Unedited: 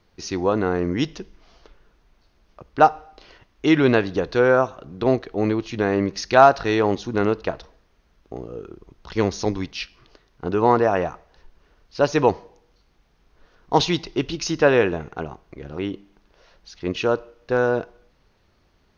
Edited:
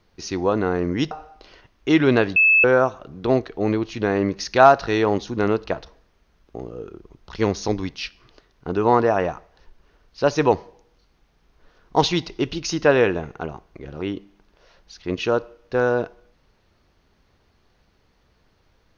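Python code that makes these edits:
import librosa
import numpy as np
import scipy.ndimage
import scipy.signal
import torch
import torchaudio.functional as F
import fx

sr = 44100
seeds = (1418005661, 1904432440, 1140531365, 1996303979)

y = fx.edit(x, sr, fx.cut(start_s=1.11, length_s=1.77),
    fx.bleep(start_s=4.13, length_s=0.28, hz=2610.0, db=-11.5), tone=tone)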